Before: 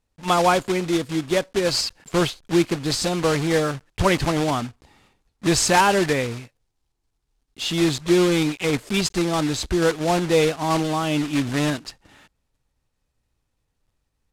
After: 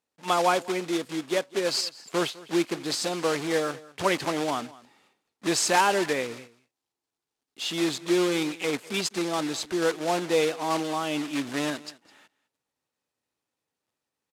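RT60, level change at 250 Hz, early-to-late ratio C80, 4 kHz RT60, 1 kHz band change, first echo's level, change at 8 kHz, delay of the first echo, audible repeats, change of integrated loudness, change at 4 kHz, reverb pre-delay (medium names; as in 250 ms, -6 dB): no reverb, -7.0 dB, no reverb, no reverb, -4.5 dB, -20.5 dB, -4.5 dB, 205 ms, 1, -5.5 dB, -4.5 dB, no reverb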